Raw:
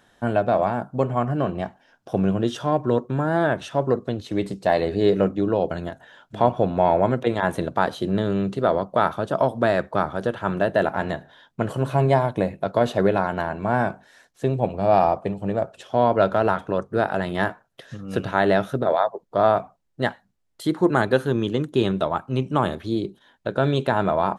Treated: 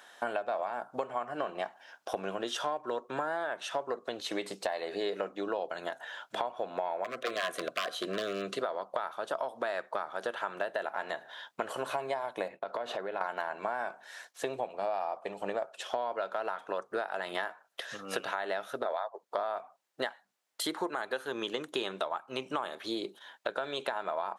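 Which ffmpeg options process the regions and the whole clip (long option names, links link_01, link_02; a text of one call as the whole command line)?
ffmpeg -i in.wav -filter_complex "[0:a]asettb=1/sr,asplit=3[link_01][link_02][link_03];[link_01]atrim=end=7.044[link_04];[link_02]atrim=start=7.04:end=8.61,asetpts=PTS-STARTPTS,afade=type=in:duration=0.004:curve=qsin,afade=type=out:start_time=1.566:duration=0.004:curve=qsin,aeval=exprs='0.178*(abs(mod(val(0)/0.178+3,4)-2)-1)':channel_layout=same,asuperstop=centerf=870:order=20:qfactor=3.5[link_05];[link_03]atrim=start=8.606[link_06];[link_04][link_05]acrossfade=duration=0.004:curve1=hsin:curve2=qsin[link_07];[link_07][link_06]acrossfade=duration=0.004:curve1=qsin:curve2=hsin,asettb=1/sr,asplit=3[link_08][link_09][link_10];[link_08]atrim=end=12.484[link_11];[link_09]atrim=start=12.48:end=13.21,asetpts=PTS-STARTPTS,afade=type=in:duration=0.004:curve=qsin,afade=type=out:start_time=0.726:duration=0.004:curve=qsin,agate=range=-33dB:threshold=-41dB:ratio=3:release=100:detection=peak,lowpass=frequency=2500:poles=1,acompressor=threshold=-30dB:ratio=6:attack=3.2:release=140:knee=1:detection=peak[link_12];[link_10]atrim=start=13.206[link_13];[link_11][link_12]acrossfade=duration=0.004:curve1=hsin:curve2=qsin[link_14];[link_14][link_13]acrossfade=duration=0.004:curve1=qsin:curve2=hsin,highpass=670,alimiter=limit=-15dB:level=0:latency=1:release=377,acompressor=threshold=-37dB:ratio=6,volume=6dB" out.wav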